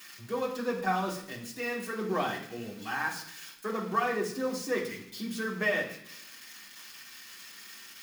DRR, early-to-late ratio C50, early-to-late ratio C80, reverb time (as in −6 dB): −5.0 dB, 8.0 dB, 11.0 dB, 0.70 s